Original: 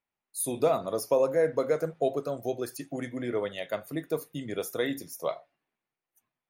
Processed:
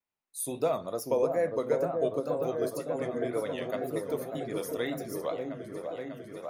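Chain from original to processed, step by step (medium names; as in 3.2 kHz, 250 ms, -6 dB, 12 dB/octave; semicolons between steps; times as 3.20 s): delay with an opening low-pass 596 ms, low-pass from 750 Hz, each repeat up 1 oct, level -3 dB; wow and flutter 85 cents; trim -3.5 dB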